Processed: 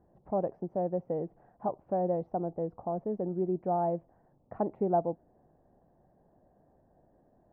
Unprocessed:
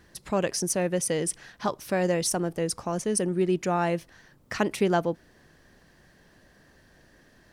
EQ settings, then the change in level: ladder low-pass 840 Hz, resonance 60%; bell 180 Hz +3.5 dB 2.8 oct; 0.0 dB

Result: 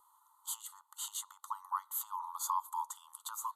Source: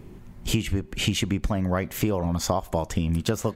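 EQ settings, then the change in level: brick-wall FIR band-pass 820–14000 Hz; Butterworth band-stop 2400 Hz, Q 0.62; fixed phaser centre 1100 Hz, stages 8; +1.5 dB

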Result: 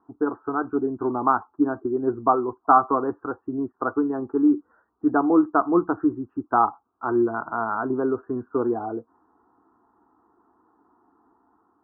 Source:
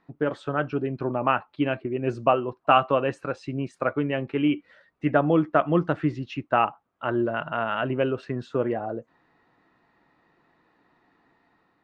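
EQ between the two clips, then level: HPF 59 Hz; steep low-pass 1500 Hz 48 dB/oct; fixed phaser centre 570 Hz, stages 6; +5.0 dB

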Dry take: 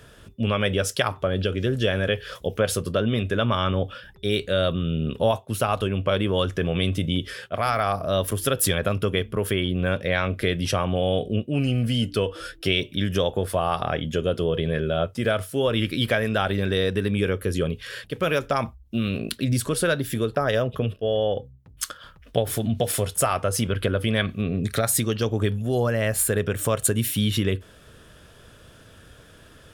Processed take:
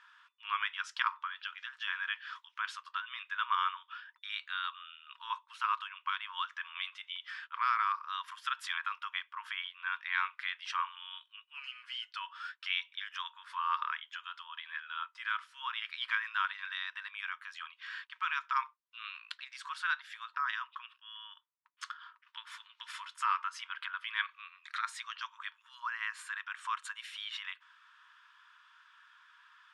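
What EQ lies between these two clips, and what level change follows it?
brick-wall FIR band-pass 910–12000 Hz; air absorption 140 m; high shelf 2200 Hz -11 dB; 0.0 dB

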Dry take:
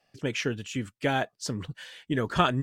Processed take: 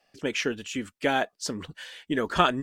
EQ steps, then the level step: bell 120 Hz -14.5 dB 0.77 oct; +2.5 dB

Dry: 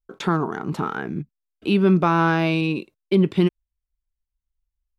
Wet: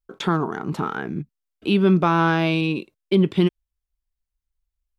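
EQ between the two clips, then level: dynamic EQ 3300 Hz, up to +7 dB, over -51 dBFS, Q 7.7; 0.0 dB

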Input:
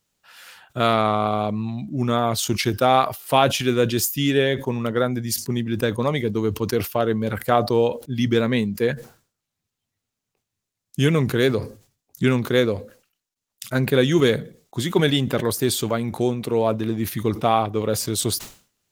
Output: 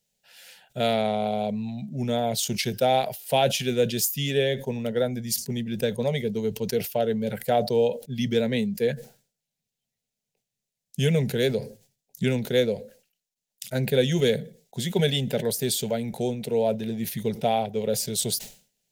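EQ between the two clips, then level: fixed phaser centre 310 Hz, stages 6; -1.5 dB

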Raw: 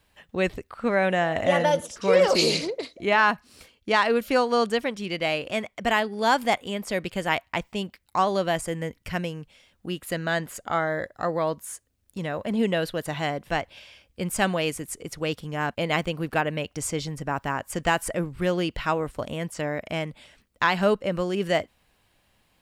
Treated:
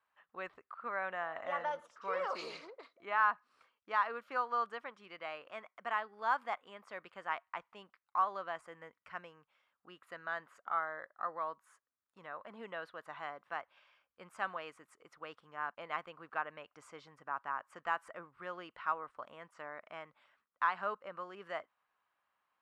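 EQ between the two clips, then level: band-pass 1200 Hz, Q 3.4; -4.5 dB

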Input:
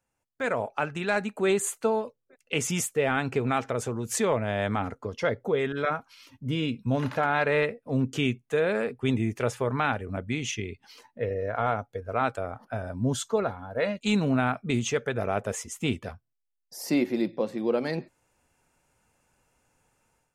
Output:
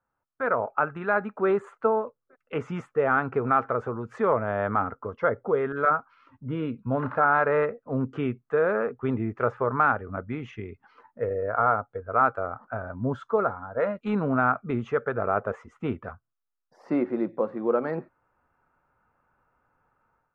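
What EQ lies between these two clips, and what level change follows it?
dynamic EQ 470 Hz, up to +4 dB, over -34 dBFS, Q 1.2; synth low-pass 1300 Hz, resonance Q 3.8; -3.0 dB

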